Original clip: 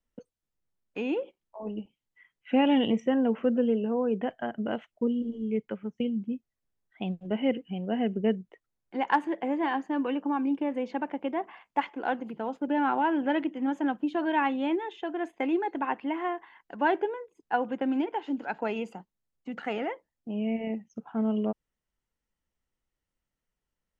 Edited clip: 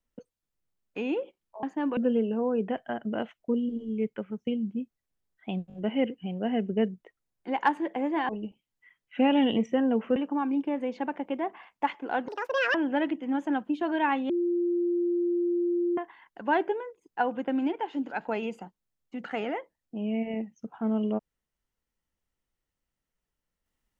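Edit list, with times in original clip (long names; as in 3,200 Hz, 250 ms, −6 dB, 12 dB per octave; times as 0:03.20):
0:01.63–0:03.50: swap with 0:09.76–0:10.10
0:07.21: stutter 0.02 s, 4 plays
0:12.22–0:13.08: play speed 185%
0:14.63–0:16.31: beep over 348 Hz −23.5 dBFS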